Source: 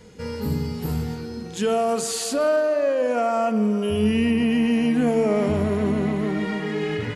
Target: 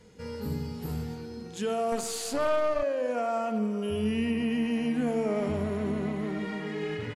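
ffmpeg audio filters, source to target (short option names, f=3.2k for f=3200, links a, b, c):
-filter_complex "[0:a]asplit=2[a][b];[b]adelay=90,highpass=300,lowpass=3.4k,asoftclip=type=hard:threshold=-18dB,volume=-10dB[c];[a][c]amix=inputs=2:normalize=0,asettb=1/sr,asplit=3[d][e][f];[d]atrim=end=1.924[g];[e]atrim=start=1.92:end=2.83,asetpts=PTS-STARTPTS,afade=t=in:d=0.004:c=qsin,afade=t=out:st=0.906:d=0.004:c=qsin,aeval=exprs='0.282*(cos(1*acos(clip(val(0)/0.282,-1,1)))-cos(1*PI/2))+0.0562*(cos(4*acos(clip(val(0)/0.282,-1,1)))-cos(4*PI/2))':c=same[h];[f]atrim=start=2.826[i];[g][h]acrossfade=d=0.004:c1=hsin:c2=qsin[j];[j][i]acrossfade=d=0.004:c1=qsin:c2=hsin,aresample=32000,aresample=44100,volume=-8dB"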